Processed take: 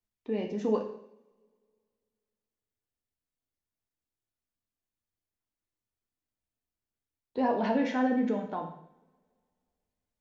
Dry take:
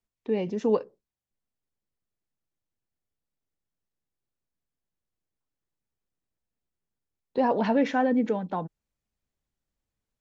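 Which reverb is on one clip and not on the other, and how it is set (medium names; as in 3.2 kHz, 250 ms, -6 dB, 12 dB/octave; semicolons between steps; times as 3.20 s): two-slope reverb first 0.66 s, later 2.3 s, from -27 dB, DRR 2 dB; trim -5.5 dB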